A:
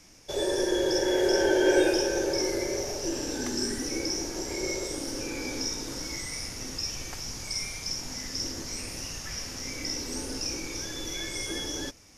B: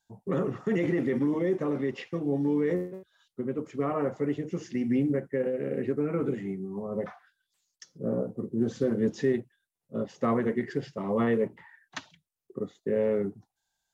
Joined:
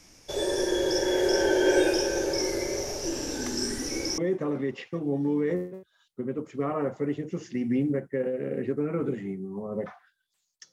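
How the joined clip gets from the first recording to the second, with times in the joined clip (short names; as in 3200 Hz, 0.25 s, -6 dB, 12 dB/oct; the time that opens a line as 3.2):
A
4.18 switch to B from 1.38 s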